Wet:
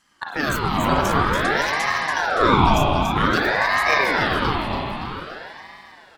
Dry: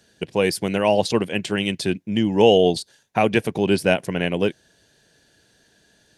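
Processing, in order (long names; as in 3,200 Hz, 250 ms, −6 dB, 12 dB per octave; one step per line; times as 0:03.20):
pitch shifter gated in a rhythm +7 semitones, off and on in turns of 296 ms
on a send: repeating echo 284 ms, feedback 53%, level −5.5 dB
on the sum: spring reverb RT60 2.8 s, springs 35/48 ms, chirp 50 ms, DRR −4.5 dB
ring modulator whose carrier an LFO sweeps 910 Hz, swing 60%, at 0.52 Hz
level −2 dB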